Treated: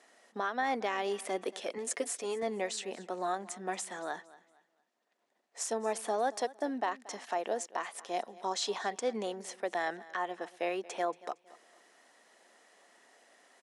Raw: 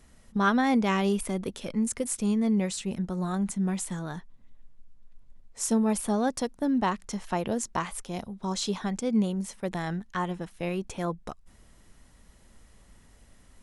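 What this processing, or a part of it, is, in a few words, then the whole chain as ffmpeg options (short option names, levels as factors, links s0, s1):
laptop speaker: -filter_complex "[0:a]highpass=f=350:w=0.5412,highpass=f=350:w=1.3066,equalizer=f=710:t=o:w=0.32:g=7.5,equalizer=f=1800:t=o:w=0.21:g=6.5,alimiter=limit=0.0794:level=0:latency=1:release=354,lowpass=7900,asettb=1/sr,asplit=3[s0][s1][s2];[s0]atrim=end=1.774[s3];[s1]atrim=start=1.77:end=2.43,asetpts=PTS-STARTPTS,afade=t=in:d=0.004:c=qsin,afade=t=out:st=0.656:d=0.004:c=qsin,aecho=1:1:7:0.61,atrim=end_sample=29106[s4];[s2]atrim=start=2.426[s5];[s3][s4]acrossfade=d=0.004:c1=hsin:c2=qsin[s6];[s6][s5]acrossfade=d=0.004:c1=qsin:c2=hsin,aecho=1:1:230|460|690:0.106|0.0328|0.0102"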